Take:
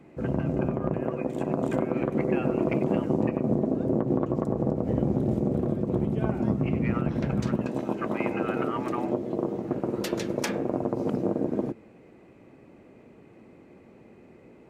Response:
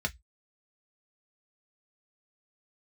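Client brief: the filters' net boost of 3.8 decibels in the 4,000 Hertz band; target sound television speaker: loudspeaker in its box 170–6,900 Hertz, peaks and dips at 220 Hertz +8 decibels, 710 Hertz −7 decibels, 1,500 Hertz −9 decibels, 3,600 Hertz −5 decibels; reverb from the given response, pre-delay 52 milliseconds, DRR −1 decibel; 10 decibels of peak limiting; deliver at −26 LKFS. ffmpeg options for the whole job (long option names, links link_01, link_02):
-filter_complex "[0:a]equalizer=frequency=4000:width_type=o:gain=8,alimiter=limit=-21dB:level=0:latency=1,asplit=2[link_01][link_02];[1:a]atrim=start_sample=2205,adelay=52[link_03];[link_02][link_03]afir=irnorm=-1:irlink=0,volume=-4.5dB[link_04];[link_01][link_04]amix=inputs=2:normalize=0,highpass=frequency=170:width=0.5412,highpass=frequency=170:width=1.3066,equalizer=frequency=220:width_type=q:width=4:gain=8,equalizer=frequency=710:width_type=q:width=4:gain=-7,equalizer=frequency=1500:width_type=q:width=4:gain=-9,equalizer=frequency=3600:width_type=q:width=4:gain=-5,lowpass=frequency=6900:width=0.5412,lowpass=frequency=6900:width=1.3066,volume=-1dB"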